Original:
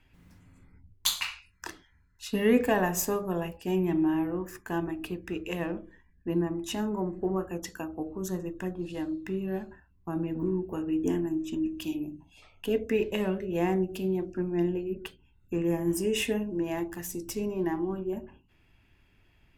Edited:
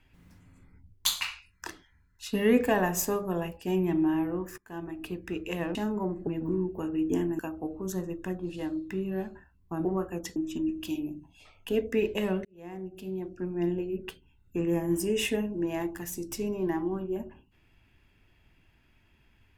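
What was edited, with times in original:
0:04.58–0:05.19: fade in, from −19.5 dB
0:05.75–0:06.72: remove
0:07.24–0:07.75: swap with 0:10.21–0:11.33
0:13.42–0:14.84: fade in

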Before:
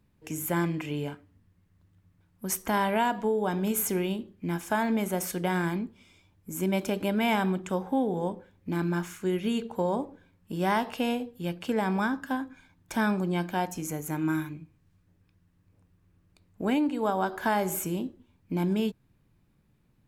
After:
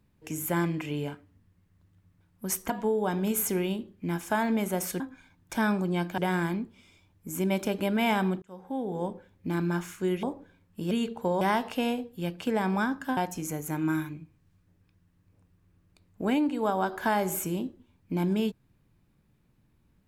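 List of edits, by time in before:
0:02.70–0:03.10: remove
0:07.64–0:08.36: fade in
0:09.45–0:09.95: move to 0:10.63
0:12.39–0:13.57: move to 0:05.40

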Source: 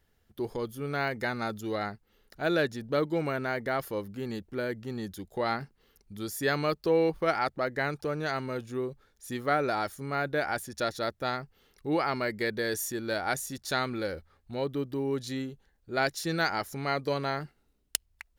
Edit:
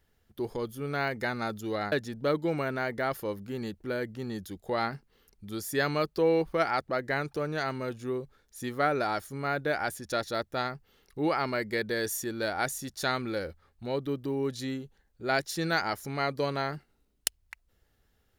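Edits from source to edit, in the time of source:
0:01.92–0:02.60: remove

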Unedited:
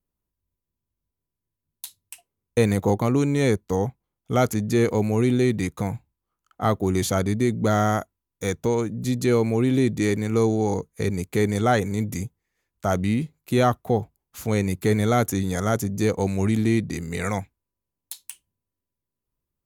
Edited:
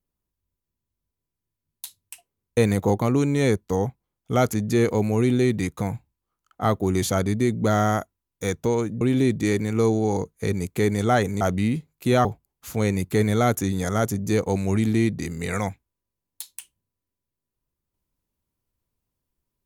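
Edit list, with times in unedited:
0:09.01–0:09.58: remove
0:11.98–0:12.87: remove
0:13.71–0:13.96: remove

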